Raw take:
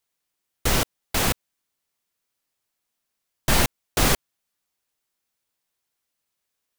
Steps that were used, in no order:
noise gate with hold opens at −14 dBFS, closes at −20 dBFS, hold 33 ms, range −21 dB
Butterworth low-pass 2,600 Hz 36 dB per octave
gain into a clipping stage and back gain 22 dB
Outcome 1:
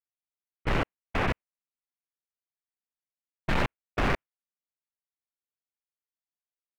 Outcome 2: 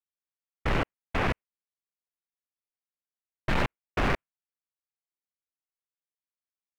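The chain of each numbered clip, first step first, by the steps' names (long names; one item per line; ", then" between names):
Butterworth low-pass, then noise gate with hold, then gain into a clipping stage and back
noise gate with hold, then Butterworth low-pass, then gain into a clipping stage and back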